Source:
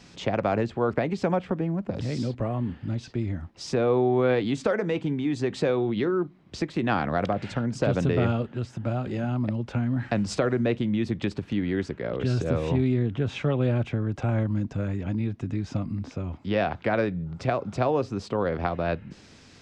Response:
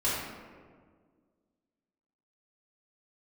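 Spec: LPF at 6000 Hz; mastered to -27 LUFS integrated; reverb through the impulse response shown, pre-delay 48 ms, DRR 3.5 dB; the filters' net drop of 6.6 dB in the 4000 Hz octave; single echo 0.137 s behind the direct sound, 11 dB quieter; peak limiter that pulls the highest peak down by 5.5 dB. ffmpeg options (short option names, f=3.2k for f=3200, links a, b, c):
-filter_complex "[0:a]lowpass=6k,equalizer=f=4k:t=o:g=-8,alimiter=limit=-17dB:level=0:latency=1,aecho=1:1:137:0.282,asplit=2[a][b];[1:a]atrim=start_sample=2205,adelay=48[c];[b][c]afir=irnorm=-1:irlink=0,volume=-13.5dB[d];[a][d]amix=inputs=2:normalize=0,volume=-1dB"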